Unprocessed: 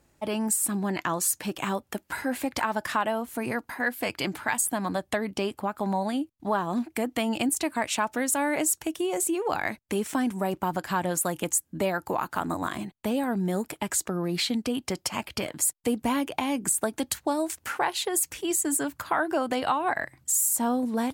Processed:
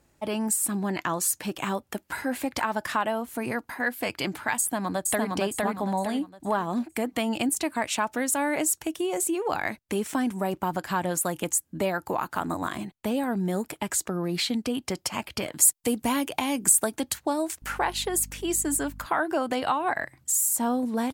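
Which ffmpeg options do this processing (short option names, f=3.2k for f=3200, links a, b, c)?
-filter_complex "[0:a]asplit=2[a][b];[b]afade=t=in:st=4.59:d=0.01,afade=t=out:st=5.34:d=0.01,aecho=0:1:460|920|1380|1840|2300:0.841395|0.294488|0.103071|0.0360748|0.0126262[c];[a][c]amix=inputs=2:normalize=0,asettb=1/sr,asplit=3[d][e][f];[d]atrim=end=15.534[g];[e]atrim=start=15.53:end=16.96,asetpts=PTS-STARTPTS,afade=t=in:d=0.004:c=qsin,afade=t=out:st=1.426:d=0.004:c=qsin,highshelf=f=3.9k:g=7.5[h];[f]atrim=start=16.956[i];[g][h]acrossfade=d=0.004:c1=hsin:c2=qsin[j];[j][i]acrossfade=d=0.004:c1=qsin:c2=hsin,asettb=1/sr,asplit=3[k][l][m];[k]atrim=end=17.624[n];[l]atrim=start=17.62:end=19.06,asetpts=PTS-STARTPTS,afade=t=in:d=0.004:c=qsin,afade=t=out:st=1.436:d=0.004:c=qsin,aeval=exprs='val(0)+0.00794*(sin(2*PI*50*n/s)+sin(2*PI*2*50*n/s)/2+sin(2*PI*3*50*n/s)/3+sin(2*PI*4*50*n/s)/4+sin(2*PI*5*50*n/s)/5)':c=same[o];[m]atrim=start=19.056[p];[n][o]acrossfade=d=0.004:c1=hsin:c2=qsin[q];[q][p]acrossfade=d=0.004:c1=qsin:c2=hsin"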